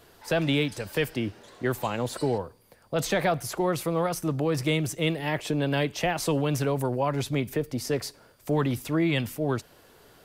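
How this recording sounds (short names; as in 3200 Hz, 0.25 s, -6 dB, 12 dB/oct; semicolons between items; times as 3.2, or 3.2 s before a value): noise floor -57 dBFS; spectral tilt -5.5 dB/oct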